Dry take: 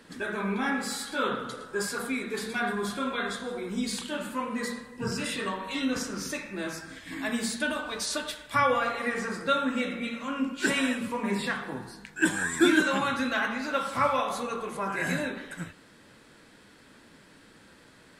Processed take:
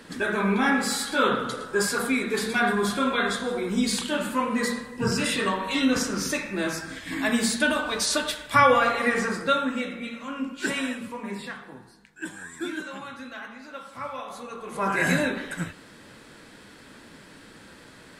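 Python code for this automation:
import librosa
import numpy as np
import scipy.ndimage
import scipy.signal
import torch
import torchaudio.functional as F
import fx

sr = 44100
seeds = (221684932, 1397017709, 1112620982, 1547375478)

y = fx.gain(x, sr, db=fx.line((9.2, 6.5), (9.92, -1.5), (10.77, -1.5), (12.2, -11.0), (13.93, -11.0), (14.63, -4.0), (14.86, 6.5)))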